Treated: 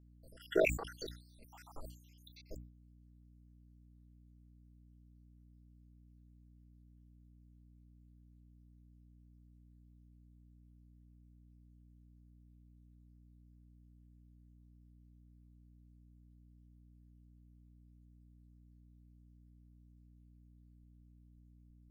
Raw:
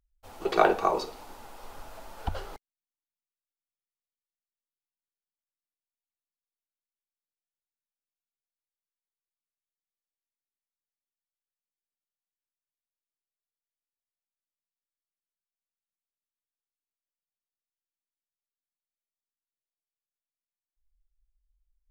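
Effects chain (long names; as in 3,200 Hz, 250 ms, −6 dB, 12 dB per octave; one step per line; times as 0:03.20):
time-frequency cells dropped at random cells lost 82%
dynamic equaliser 470 Hz, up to +4 dB, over −42 dBFS, Q 0.84
output level in coarse steps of 15 dB
mains hum 60 Hz, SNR 11 dB
level that may fall only so fast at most 100 dB per second
level +2.5 dB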